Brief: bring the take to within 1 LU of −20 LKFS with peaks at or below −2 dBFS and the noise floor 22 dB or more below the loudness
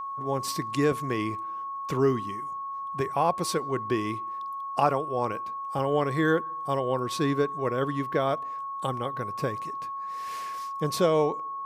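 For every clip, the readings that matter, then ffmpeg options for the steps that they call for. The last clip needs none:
interfering tone 1,100 Hz; level of the tone −32 dBFS; integrated loudness −28.5 LKFS; sample peak −8.5 dBFS; target loudness −20.0 LKFS
→ -af "bandreject=frequency=1100:width=30"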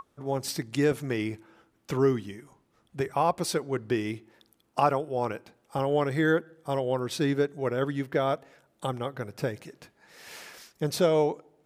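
interfering tone none found; integrated loudness −29.0 LKFS; sample peak −9.0 dBFS; target loudness −20.0 LKFS
→ -af "volume=9dB,alimiter=limit=-2dB:level=0:latency=1"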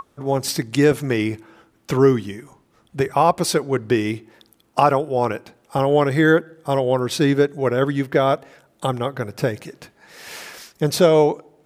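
integrated loudness −20.0 LKFS; sample peak −2.0 dBFS; background noise floor −60 dBFS

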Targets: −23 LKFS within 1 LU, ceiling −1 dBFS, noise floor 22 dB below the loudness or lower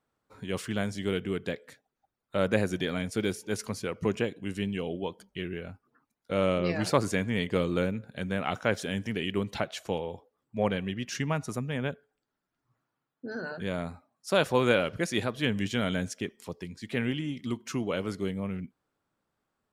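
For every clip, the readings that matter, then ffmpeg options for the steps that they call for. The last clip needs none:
integrated loudness −31.0 LKFS; sample peak −10.0 dBFS; target loudness −23.0 LKFS
→ -af "volume=8dB"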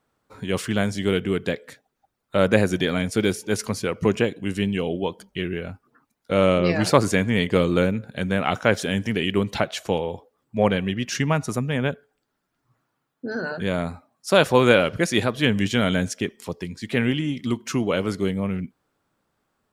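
integrated loudness −23.0 LKFS; sample peak −2.0 dBFS; background noise floor −77 dBFS

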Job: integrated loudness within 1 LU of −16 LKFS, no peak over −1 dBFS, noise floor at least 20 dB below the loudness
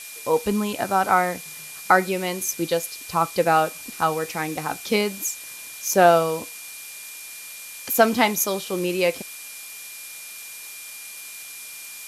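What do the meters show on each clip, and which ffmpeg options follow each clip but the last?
interfering tone 2,400 Hz; level of the tone −42 dBFS; background noise floor −39 dBFS; target noise floor −42 dBFS; integrated loudness −22.0 LKFS; sample peak −2.5 dBFS; target loudness −16.0 LKFS
→ -af "bandreject=frequency=2400:width=30"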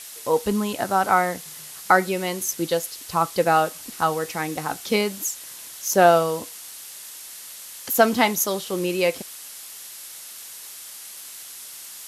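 interfering tone none found; background noise floor −40 dBFS; target noise floor −43 dBFS
→ -af "afftdn=noise_reduction=6:noise_floor=-40"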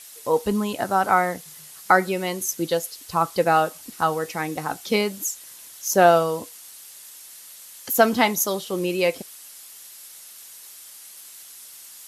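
background noise floor −44 dBFS; integrated loudness −22.5 LKFS; sample peak −3.0 dBFS; target loudness −16.0 LKFS
→ -af "volume=6.5dB,alimiter=limit=-1dB:level=0:latency=1"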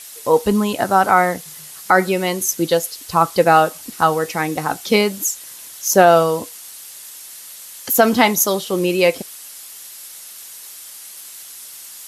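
integrated loudness −16.5 LKFS; sample peak −1.0 dBFS; background noise floor −38 dBFS

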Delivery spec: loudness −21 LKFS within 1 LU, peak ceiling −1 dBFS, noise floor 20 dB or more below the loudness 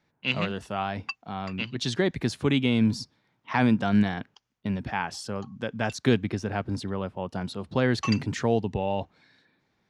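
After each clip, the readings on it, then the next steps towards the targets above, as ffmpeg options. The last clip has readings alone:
integrated loudness −28.0 LKFS; sample peak −9.0 dBFS; target loudness −21.0 LKFS
→ -af "volume=7dB"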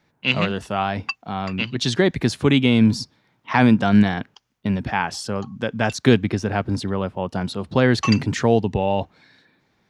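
integrated loudness −21.0 LKFS; sample peak −2.0 dBFS; background noise floor −67 dBFS

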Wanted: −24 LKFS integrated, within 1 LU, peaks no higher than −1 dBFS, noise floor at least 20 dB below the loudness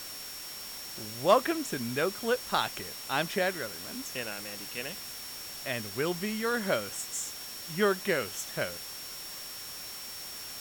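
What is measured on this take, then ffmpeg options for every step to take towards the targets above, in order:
interfering tone 5,500 Hz; level of the tone −44 dBFS; background noise floor −42 dBFS; target noise floor −53 dBFS; integrated loudness −32.5 LKFS; sample peak −10.0 dBFS; target loudness −24.0 LKFS
→ -af "bandreject=frequency=5500:width=30"
-af "afftdn=noise_reduction=11:noise_floor=-42"
-af "volume=8.5dB"

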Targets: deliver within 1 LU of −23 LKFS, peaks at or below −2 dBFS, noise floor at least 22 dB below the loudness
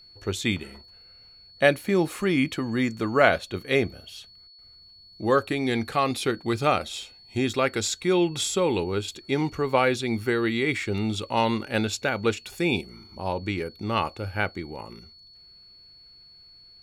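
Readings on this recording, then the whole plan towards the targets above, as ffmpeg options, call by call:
interfering tone 4,400 Hz; level of the tone −49 dBFS; integrated loudness −25.5 LKFS; sample peak −3.5 dBFS; target loudness −23.0 LKFS
→ -af "bandreject=frequency=4400:width=30"
-af "volume=2.5dB,alimiter=limit=-2dB:level=0:latency=1"

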